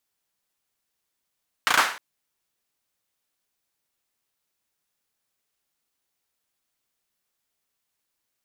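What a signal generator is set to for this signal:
synth clap length 0.31 s, apart 35 ms, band 1,300 Hz, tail 0.44 s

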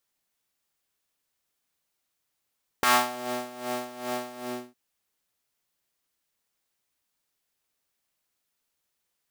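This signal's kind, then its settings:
subtractive patch with tremolo B3, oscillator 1 triangle, oscillator 2 level −16.5 dB, sub −5.5 dB, noise −19.5 dB, filter highpass, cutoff 320 Hz, Q 1.8, filter envelope 2 octaves, filter decay 0.36 s, filter sustain 40%, attack 1.7 ms, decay 0.41 s, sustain −15.5 dB, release 0.37 s, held 1.54 s, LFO 2.5 Hz, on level 14 dB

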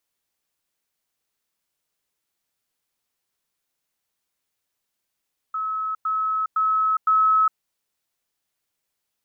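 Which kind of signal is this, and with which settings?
level staircase 1,290 Hz −23.5 dBFS, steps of 3 dB, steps 4, 0.41 s 0.10 s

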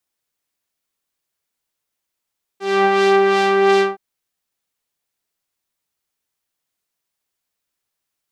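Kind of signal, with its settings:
subtractive patch with filter wobble G4, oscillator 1 saw, sub −20 dB, noise −21 dB, filter lowpass, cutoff 1,700 Hz, Q 0.75, filter envelope 2 octaves, filter decay 0.05 s, attack 249 ms, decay 0.06 s, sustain −3 dB, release 0.16 s, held 1.21 s, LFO 2.8 Hz, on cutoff 0.6 octaves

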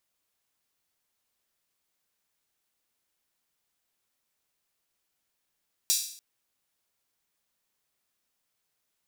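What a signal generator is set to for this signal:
open synth hi-hat length 0.29 s, high-pass 4,800 Hz, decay 0.58 s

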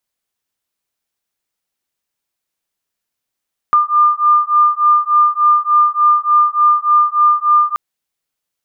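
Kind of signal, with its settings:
two tones that beat 1,200 Hz, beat 3.4 Hz, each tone −12 dBFS 4.03 s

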